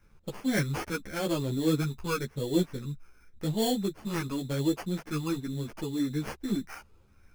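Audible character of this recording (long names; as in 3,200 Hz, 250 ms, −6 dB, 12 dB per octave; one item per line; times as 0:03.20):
phaser sweep stages 8, 0.9 Hz, lowest notch 630–1,500 Hz
aliases and images of a low sample rate 3,800 Hz, jitter 0%
a shimmering, thickened sound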